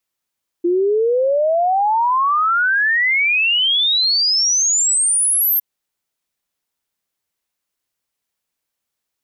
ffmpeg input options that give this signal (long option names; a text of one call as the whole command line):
ffmpeg -f lavfi -i "aevalsrc='0.224*clip(min(t,4.96-t)/0.01,0,1)*sin(2*PI*340*4.96/log(13000/340)*(exp(log(13000/340)*t/4.96)-1))':duration=4.96:sample_rate=44100" out.wav